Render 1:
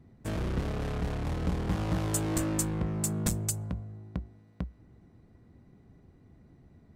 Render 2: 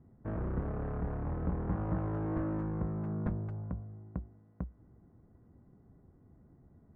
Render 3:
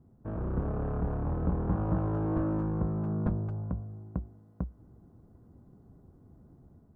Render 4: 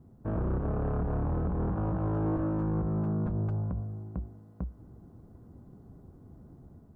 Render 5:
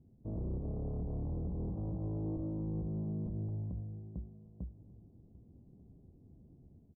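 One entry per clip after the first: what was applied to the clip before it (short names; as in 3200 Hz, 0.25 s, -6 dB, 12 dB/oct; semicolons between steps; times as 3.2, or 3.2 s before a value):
LPF 1500 Hz 24 dB/oct; gain -3.5 dB
bell 2000 Hz -9.5 dB 0.51 oct; AGC gain up to 4.5 dB
limiter -29 dBFS, peak gain reduction 11 dB; gain +4.5 dB
Gaussian blur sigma 13 samples; echo 1.191 s -21.5 dB; gain -7 dB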